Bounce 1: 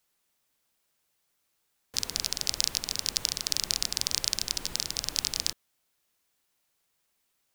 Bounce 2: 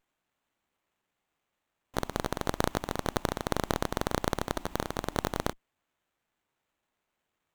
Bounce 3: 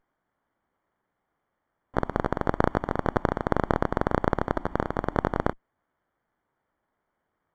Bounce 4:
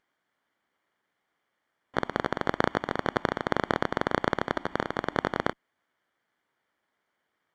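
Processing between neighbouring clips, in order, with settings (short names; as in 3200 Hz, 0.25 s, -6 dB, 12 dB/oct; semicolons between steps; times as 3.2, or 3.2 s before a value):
fixed phaser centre 470 Hz, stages 6; running maximum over 9 samples; gain -2 dB
polynomial smoothing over 41 samples; gain +6 dB
weighting filter D; gain -2 dB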